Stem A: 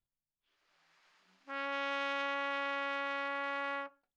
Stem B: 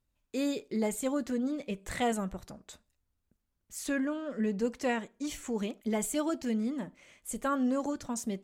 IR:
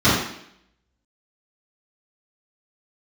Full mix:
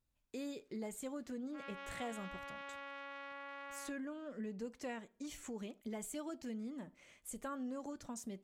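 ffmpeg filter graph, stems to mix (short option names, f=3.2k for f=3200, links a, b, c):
-filter_complex "[0:a]adelay=50,volume=-7dB[a];[1:a]volume=-5dB[b];[a][b]amix=inputs=2:normalize=0,acompressor=threshold=-47dB:ratio=2"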